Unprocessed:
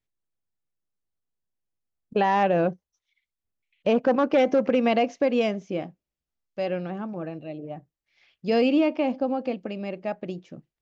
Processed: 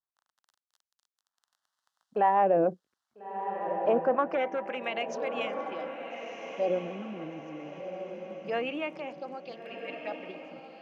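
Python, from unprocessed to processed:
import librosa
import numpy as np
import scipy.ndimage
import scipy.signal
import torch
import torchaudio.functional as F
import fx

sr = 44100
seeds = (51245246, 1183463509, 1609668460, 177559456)

p1 = fx.low_shelf(x, sr, hz=210.0, db=-4.5)
p2 = fx.level_steps(p1, sr, step_db=16)
p3 = p1 + (p2 * librosa.db_to_amplitude(0.5))
p4 = fx.dmg_crackle(p3, sr, seeds[0], per_s=22.0, level_db=-36.0)
p5 = fx.harmonic_tremolo(p4, sr, hz=7.3, depth_pct=50, crossover_hz=490.0)
p6 = fx.env_phaser(p5, sr, low_hz=400.0, high_hz=5000.0, full_db=-19.5)
p7 = fx.filter_lfo_bandpass(p6, sr, shape='sine', hz=0.24, low_hz=330.0, high_hz=3400.0, q=0.87)
y = p7 + fx.echo_diffused(p7, sr, ms=1350, feedback_pct=41, wet_db=-7.5, dry=0)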